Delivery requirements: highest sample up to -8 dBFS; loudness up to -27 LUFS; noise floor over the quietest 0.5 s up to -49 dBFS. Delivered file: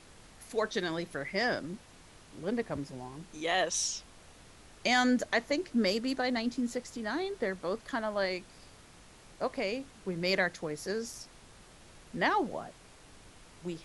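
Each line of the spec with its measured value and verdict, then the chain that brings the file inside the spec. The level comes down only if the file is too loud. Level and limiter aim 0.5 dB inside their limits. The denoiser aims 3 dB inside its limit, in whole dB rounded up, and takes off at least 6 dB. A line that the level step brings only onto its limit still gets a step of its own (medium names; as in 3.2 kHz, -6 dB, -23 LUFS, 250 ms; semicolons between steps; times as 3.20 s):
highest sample -14.0 dBFS: pass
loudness -32.5 LUFS: pass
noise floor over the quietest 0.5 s -55 dBFS: pass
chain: none needed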